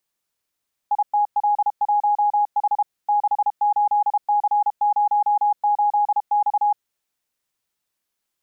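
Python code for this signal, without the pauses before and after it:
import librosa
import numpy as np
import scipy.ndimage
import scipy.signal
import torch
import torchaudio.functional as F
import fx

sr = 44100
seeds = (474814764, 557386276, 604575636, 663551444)

y = fx.morse(sr, text='ITL1H 68C08X', wpm=32, hz=829.0, level_db=-15.0)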